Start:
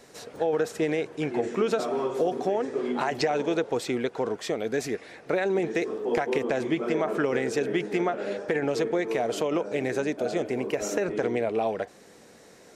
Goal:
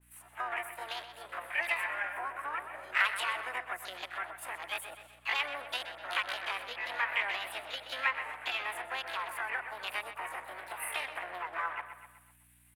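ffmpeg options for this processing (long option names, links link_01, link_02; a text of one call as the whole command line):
ffmpeg -i in.wav -filter_complex "[0:a]afwtdn=0.02,highpass=frequency=1200:width_type=q:width=3.5,asplit=4[link_01][link_02][link_03][link_04];[link_02]asetrate=22050,aresample=44100,atempo=2,volume=-16dB[link_05];[link_03]asetrate=55563,aresample=44100,atempo=0.793701,volume=-7dB[link_06];[link_04]asetrate=58866,aresample=44100,atempo=0.749154,volume=-8dB[link_07];[link_01][link_05][link_06][link_07]amix=inputs=4:normalize=0,highshelf=frequency=5000:width_type=q:width=3:gain=9.5,asetrate=66075,aresample=44100,atempo=0.66742,aeval=exprs='val(0)+0.000794*(sin(2*PI*60*n/s)+sin(2*PI*2*60*n/s)/2+sin(2*PI*3*60*n/s)/3+sin(2*PI*4*60*n/s)/4+sin(2*PI*5*60*n/s)/5)':channel_layout=same,asplit=2[link_08][link_09];[link_09]adelay=126,lowpass=frequency=4900:poles=1,volume=-10dB,asplit=2[link_10][link_11];[link_11]adelay=126,lowpass=frequency=4900:poles=1,volume=0.49,asplit=2[link_12][link_13];[link_13]adelay=126,lowpass=frequency=4900:poles=1,volume=0.49,asplit=2[link_14][link_15];[link_15]adelay=126,lowpass=frequency=4900:poles=1,volume=0.49,asplit=2[link_16][link_17];[link_17]adelay=126,lowpass=frequency=4900:poles=1,volume=0.49[link_18];[link_08][link_10][link_12][link_14][link_16][link_18]amix=inputs=6:normalize=0,adynamicequalizer=threshold=0.01:dfrequency=1900:dqfactor=0.7:tfrequency=1900:tqfactor=0.7:attack=5:release=100:ratio=0.375:range=3:mode=cutabove:tftype=highshelf,volume=-3dB" out.wav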